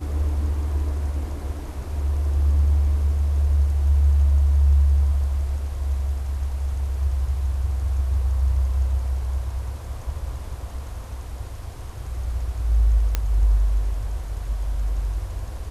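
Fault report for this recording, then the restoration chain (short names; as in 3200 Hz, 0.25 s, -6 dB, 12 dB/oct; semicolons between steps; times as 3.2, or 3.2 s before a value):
13.15 pop -8 dBFS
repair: de-click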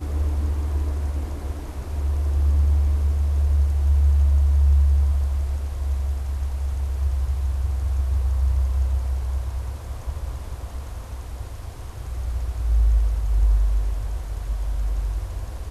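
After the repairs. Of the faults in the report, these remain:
none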